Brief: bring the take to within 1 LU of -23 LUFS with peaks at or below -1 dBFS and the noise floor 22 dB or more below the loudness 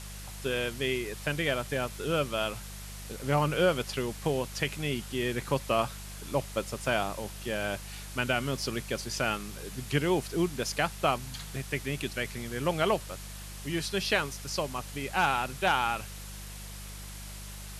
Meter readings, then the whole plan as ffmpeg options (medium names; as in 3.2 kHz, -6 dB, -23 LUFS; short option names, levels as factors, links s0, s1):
hum 50 Hz; highest harmonic 200 Hz; hum level -41 dBFS; noise floor -42 dBFS; noise floor target -53 dBFS; loudness -31.0 LUFS; peak level -13.0 dBFS; loudness target -23.0 LUFS
-> -af "bandreject=f=50:t=h:w=4,bandreject=f=100:t=h:w=4,bandreject=f=150:t=h:w=4,bandreject=f=200:t=h:w=4"
-af "afftdn=nr=11:nf=-42"
-af "volume=2.51"